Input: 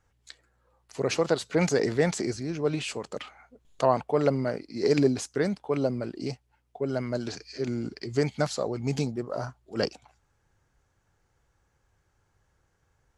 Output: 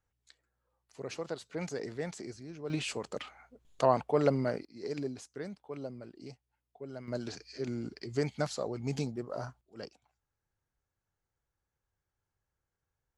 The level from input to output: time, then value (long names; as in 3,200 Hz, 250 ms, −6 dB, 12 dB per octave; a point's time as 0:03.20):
−13.5 dB
from 0:02.70 −3 dB
from 0:04.65 −14.5 dB
from 0:07.08 −6 dB
from 0:09.61 −17 dB